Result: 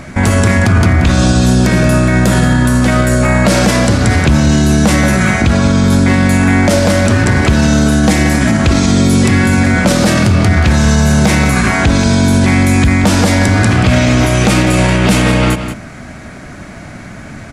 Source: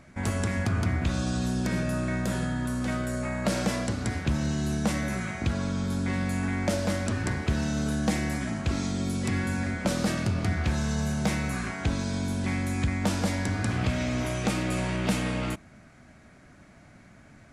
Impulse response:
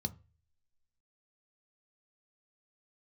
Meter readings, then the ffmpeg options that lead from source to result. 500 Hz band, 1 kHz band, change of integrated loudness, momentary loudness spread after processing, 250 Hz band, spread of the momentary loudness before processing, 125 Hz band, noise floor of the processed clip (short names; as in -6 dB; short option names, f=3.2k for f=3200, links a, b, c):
+18.5 dB, +18.5 dB, +18.5 dB, 1 LU, +18.0 dB, 3 LU, +18.5 dB, -30 dBFS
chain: -filter_complex "[0:a]asplit=2[a][b];[b]aecho=0:1:180:0.211[c];[a][c]amix=inputs=2:normalize=0,alimiter=level_in=24dB:limit=-1dB:release=50:level=0:latency=1,volume=-1dB"